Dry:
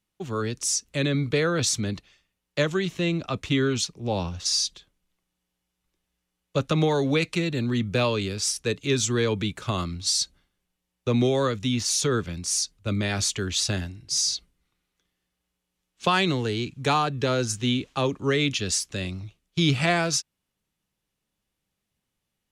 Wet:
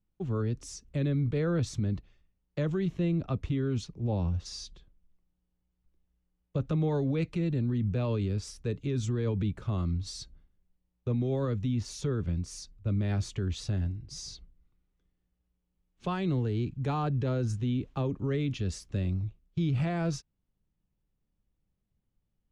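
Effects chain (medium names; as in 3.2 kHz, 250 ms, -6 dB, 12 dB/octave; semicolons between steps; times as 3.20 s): tilt EQ -4 dB/octave; peak limiter -13.5 dBFS, peak gain reduction 9.5 dB; trim -8.5 dB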